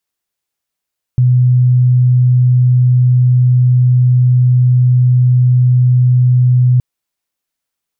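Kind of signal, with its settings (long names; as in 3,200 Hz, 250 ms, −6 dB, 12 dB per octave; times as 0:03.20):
tone sine 125 Hz −6 dBFS 5.62 s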